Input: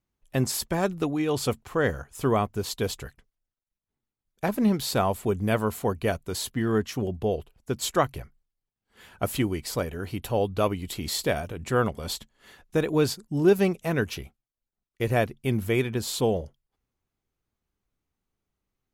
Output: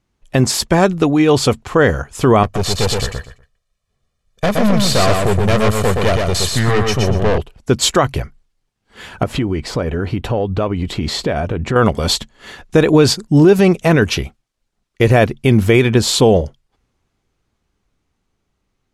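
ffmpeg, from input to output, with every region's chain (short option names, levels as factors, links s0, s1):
-filter_complex "[0:a]asettb=1/sr,asplit=3[s0][s1][s2];[s0]atrim=end=2.434[s3];[s1]atrim=start=2.43:end=7.38,asetpts=PTS-STARTPTS,afade=t=in:d=0.004:c=qsin,afade=t=out:st=4.946:d=0.004:c=qsin,aecho=1:1:1.7:0.86,atrim=end_sample=218295,aeval=exprs='(tanh(28.2*val(0)+0.6)-tanh(0.6))/28.2':c=same,aecho=1:1:121|242|363:0.668|0.14|0.0295,atrim=end_sample=218295[s4];[s2]atrim=start=7.376[s5];[s3][s4]acrossfade=d=0.004:c1=hsin:c2=qsin[s6];[s6][s5]acrossfade=d=0.004:c1=qsin:c2=hsin,asettb=1/sr,asplit=3[s7][s8][s9];[s7]atrim=end=9.234[s10];[s8]atrim=start=9.23:end=11.76,asetpts=PTS-STARTPTS,afade=t=in:d=0.004:c=qsin,afade=t=out:st=2.526:d=0.004:c=qsin,lowpass=f=1800:p=1,acompressor=threshold=0.0282:ratio=5:attack=3.2:release=140:knee=1:detection=peak[s11];[s9]atrim=start=11.756[s12];[s10][s11]acrossfade=d=0.004:c1=hsin:c2=qsin[s13];[s13][s12]acrossfade=d=0.004:c1=qsin:c2=hsin,lowpass=7900,dynaudnorm=f=730:g=7:m=1.41,alimiter=level_in=5.62:limit=0.891:release=50:level=0:latency=1,volume=0.891"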